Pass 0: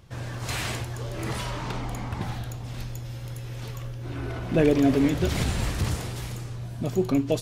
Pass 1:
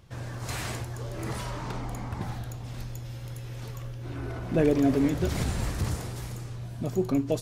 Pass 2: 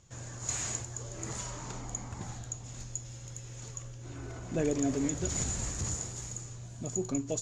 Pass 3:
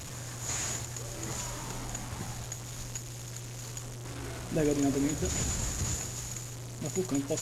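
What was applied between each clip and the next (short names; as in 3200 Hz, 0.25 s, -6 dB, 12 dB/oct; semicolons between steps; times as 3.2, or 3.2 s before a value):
dynamic EQ 3000 Hz, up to -5 dB, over -50 dBFS, Q 1.2; gain -2.5 dB
synth low-pass 6900 Hz, resonance Q 16; gain -7.5 dB
delta modulation 64 kbps, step -37.5 dBFS; gain +2 dB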